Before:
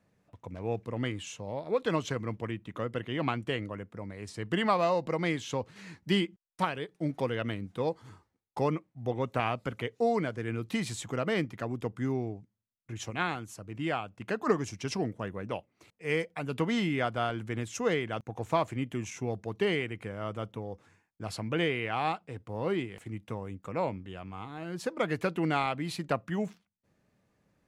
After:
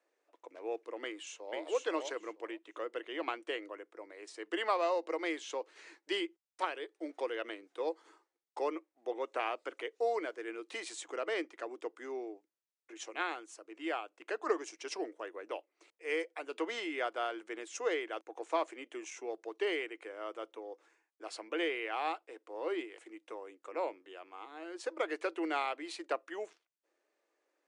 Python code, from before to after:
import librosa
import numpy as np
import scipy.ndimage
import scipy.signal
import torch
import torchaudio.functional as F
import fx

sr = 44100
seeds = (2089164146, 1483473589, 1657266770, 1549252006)

y = fx.echo_throw(x, sr, start_s=1.04, length_s=0.58, ms=480, feedback_pct=15, wet_db=-2.5)
y = scipy.signal.sosfilt(scipy.signal.cheby1(5, 1.0, [320.0, 9500.0], 'bandpass', fs=sr, output='sos'), y)
y = y * librosa.db_to_amplitude(-4.0)